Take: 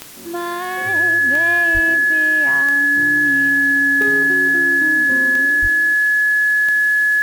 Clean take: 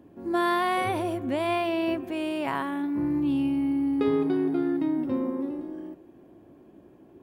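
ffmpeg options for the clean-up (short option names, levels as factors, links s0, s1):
-filter_complex "[0:a]adeclick=t=4,bandreject=f=1700:w=30,asplit=3[s0][s1][s2];[s0]afade=t=out:st=1.73:d=0.02[s3];[s1]highpass=f=140:w=0.5412,highpass=f=140:w=1.3066,afade=t=in:st=1.73:d=0.02,afade=t=out:st=1.85:d=0.02[s4];[s2]afade=t=in:st=1.85:d=0.02[s5];[s3][s4][s5]amix=inputs=3:normalize=0,asplit=3[s6][s7][s8];[s6]afade=t=out:st=5.61:d=0.02[s9];[s7]highpass=f=140:w=0.5412,highpass=f=140:w=1.3066,afade=t=in:st=5.61:d=0.02,afade=t=out:st=5.73:d=0.02[s10];[s8]afade=t=in:st=5.73:d=0.02[s11];[s9][s10][s11]amix=inputs=3:normalize=0,afwtdn=0.013"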